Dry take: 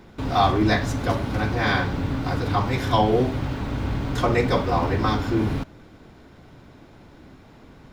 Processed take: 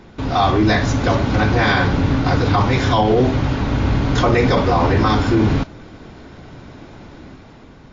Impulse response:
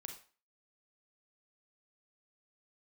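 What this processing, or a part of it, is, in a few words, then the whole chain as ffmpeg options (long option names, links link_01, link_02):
low-bitrate web radio: -af "dynaudnorm=framelen=110:gausssize=13:maxgain=5dB,alimiter=limit=-11dB:level=0:latency=1:release=22,volume=5dB" -ar 16000 -c:a libmp3lame -b:a 40k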